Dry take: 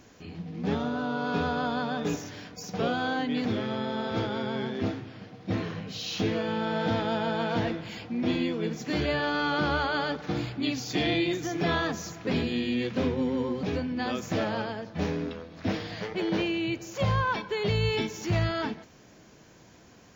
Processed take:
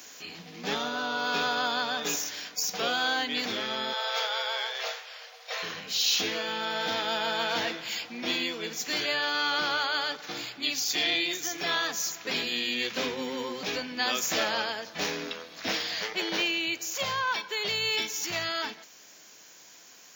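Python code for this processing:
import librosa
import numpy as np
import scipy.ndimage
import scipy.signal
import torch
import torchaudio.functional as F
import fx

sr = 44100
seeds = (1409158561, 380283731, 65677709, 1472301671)

y = fx.steep_highpass(x, sr, hz=460.0, slope=72, at=(3.93, 5.63))
y = fx.highpass(y, sr, hz=210.0, slope=6)
y = fx.tilt_eq(y, sr, slope=4.5)
y = fx.rider(y, sr, range_db=4, speed_s=2.0)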